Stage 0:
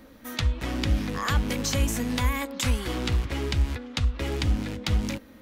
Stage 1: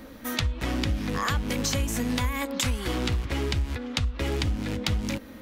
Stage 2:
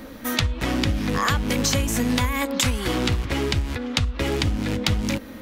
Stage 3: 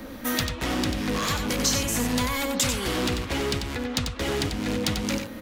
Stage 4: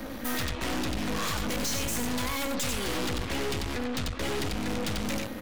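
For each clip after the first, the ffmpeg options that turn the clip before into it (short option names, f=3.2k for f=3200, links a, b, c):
-af "acompressor=threshold=-30dB:ratio=5,volume=6dB"
-af "equalizer=f=66:w=5.2:g=-7.5,volume=5.5dB"
-filter_complex "[0:a]acrossover=split=250|3900[a][b][c];[a]acompressor=threshold=-30dB:ratio=6[d];[b]aeval=exprs='0.0631*(abs(mod(val(0)/0.0631+3,4)-2)-1)':c=same[e];[d][e][c]amix=inputs=3:normalize=0,aecho=1:1:92:0.473"
-af "aeval=exprs='(tanh(50.1*val(0)+0.8)-tanh(0.8))/50.1':c=same,volume=5dB"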